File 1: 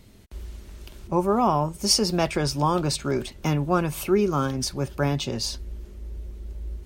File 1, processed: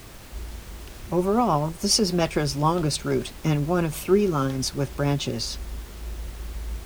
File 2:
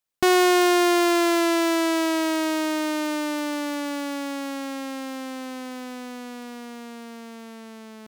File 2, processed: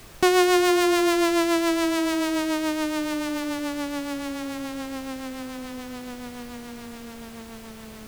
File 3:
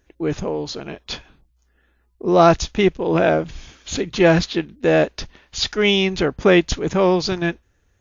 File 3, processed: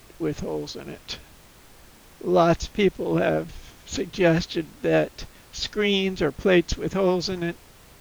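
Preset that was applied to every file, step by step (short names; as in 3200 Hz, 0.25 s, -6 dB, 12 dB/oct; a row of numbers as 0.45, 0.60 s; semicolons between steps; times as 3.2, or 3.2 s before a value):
rotary speaker horn 7 Hz; added noise pink -47 dBFS; match loudness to -24 LUFS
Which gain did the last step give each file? +2.5, +1.0, -3.0 dB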